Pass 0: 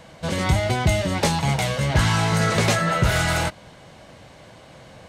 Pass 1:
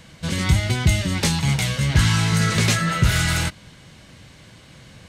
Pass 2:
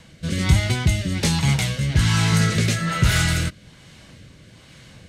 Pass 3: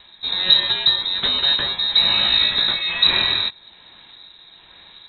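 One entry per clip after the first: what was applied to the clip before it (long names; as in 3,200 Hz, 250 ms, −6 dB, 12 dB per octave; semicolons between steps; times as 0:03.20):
parametric band 680 Hz −13.5 dB 1.6 octaves; level +3.5 dB
rotating-speaker cabinet horn 1.2 Hz; level +1.5 dB
voice inversion scrambler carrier 3,900 Hz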